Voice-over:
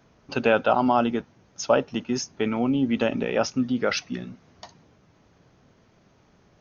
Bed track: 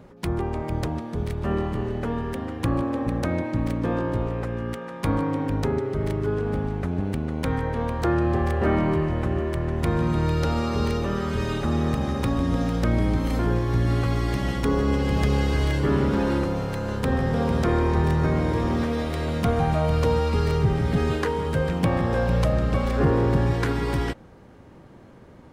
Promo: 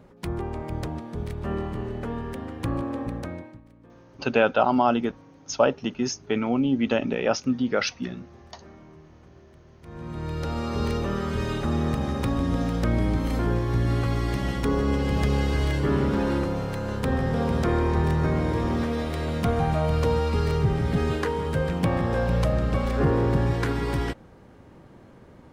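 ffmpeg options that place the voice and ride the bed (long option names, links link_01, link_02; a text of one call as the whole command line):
ffmpeg -i stem1.wav -i stem2.wav -filter_complex "[0:a]adelay=3900,volume=0dB[link_01];[1:a]volume=21.5dB,afade=type=out:start_time=2.99:duration=0.62:silence=0.0707946,afade=type=in:start_time=9.81:duration=1.13:silence=0.0530884[link_02];[link_01][link_02]amix=inputs=2:normalize=0" out.wav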